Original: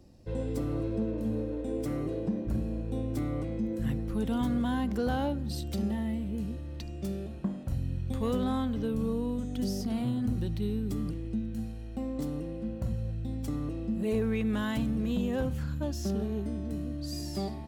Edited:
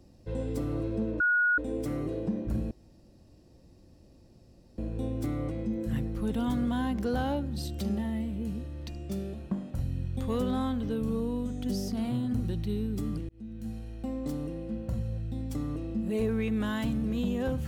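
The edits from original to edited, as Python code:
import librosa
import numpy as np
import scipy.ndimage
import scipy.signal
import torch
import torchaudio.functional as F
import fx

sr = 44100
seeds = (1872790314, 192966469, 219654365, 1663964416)

y = fx.edit(x, sr, fx.bleep(start_s=1.2, length_s=0.38, hz=1450.0, db=-21.5),
    fx.insert_room_tone(at_s=2.71, length_s=2.07),
    fx.fade_in_span(start_s=11.22, length_s=0.49), tone=tone)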